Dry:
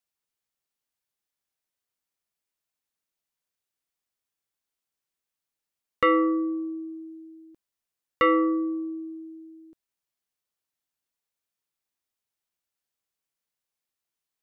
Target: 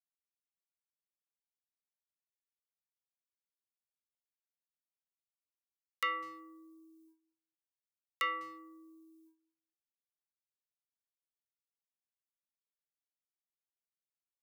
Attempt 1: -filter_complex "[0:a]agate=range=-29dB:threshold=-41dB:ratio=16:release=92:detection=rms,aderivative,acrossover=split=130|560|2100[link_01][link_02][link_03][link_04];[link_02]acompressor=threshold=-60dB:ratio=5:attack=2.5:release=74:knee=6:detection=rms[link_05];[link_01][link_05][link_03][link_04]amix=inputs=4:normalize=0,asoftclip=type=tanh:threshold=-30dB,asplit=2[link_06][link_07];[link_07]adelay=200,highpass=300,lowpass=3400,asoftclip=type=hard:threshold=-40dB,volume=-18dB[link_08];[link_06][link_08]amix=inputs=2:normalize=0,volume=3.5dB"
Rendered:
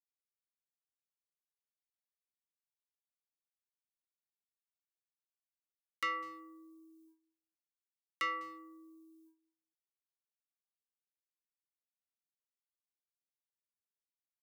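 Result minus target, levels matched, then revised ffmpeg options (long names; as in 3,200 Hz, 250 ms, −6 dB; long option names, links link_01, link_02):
soft clipping: distortion +14 dB
-filter_complex "[0:a]agate=range=-29dB:threshold=-41dB:ratio=16:release=92:detection=rms,aderivative,acrossover=split=130|560|2100[link_01][link_02][link_03][link_04];[link_02]acompressor=threshold=-60dB:ratio=5:attack=2.5:release=74:knee=6:detection=rms[link_05];[link_01][link_05][link_03][link_04]amix=inputs=4:normalize=0,asoftclip=type=tanh:threshold=-20.5dB,asplit=2[link_06][link_07];[link_07]adelay=200,highpass=300,lowpass=3400,asoftclip=type=hard:threshold=-40dB,volume=-18dB[link_08];[link_06][link_08]amix=inputs=2:normalize=0,volume=3.5dB"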